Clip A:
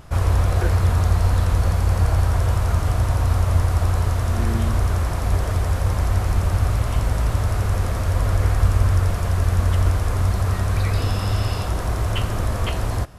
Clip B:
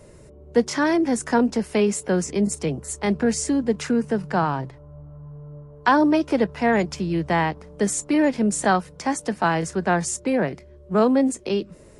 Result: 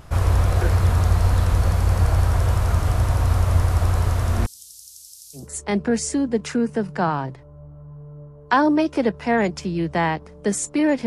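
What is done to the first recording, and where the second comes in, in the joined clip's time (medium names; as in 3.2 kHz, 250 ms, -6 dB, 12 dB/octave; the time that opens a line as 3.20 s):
clip A
4.46–5.49 s: inverse Chebyshev high-pass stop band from 2 kHz, stop band 50 dB
5.41 s: go over to clip B from 2.76 s, crossfade 0.16 s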